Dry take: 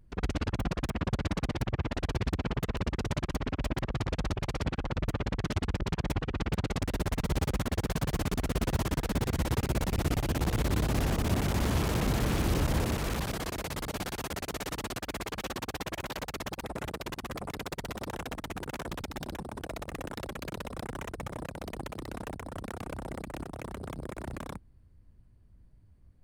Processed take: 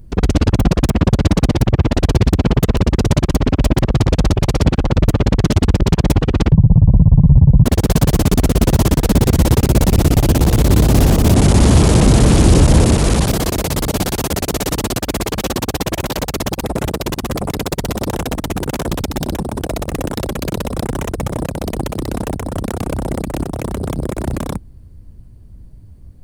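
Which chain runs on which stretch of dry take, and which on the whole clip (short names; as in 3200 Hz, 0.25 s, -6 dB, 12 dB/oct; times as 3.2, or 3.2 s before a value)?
6.52–7.64 brick-wall FIR low-pass 1100 Hz + resonant low shelf 220 Hz +14 dB, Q 3
11.34–13.28 overloaded stage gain 22 dB + careless resampling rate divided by 2×, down none, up filtered
whole clip: bell 1700 Hz -8.5 dB 2.3 oct; maximiser +20.5 dB; gain -1 dB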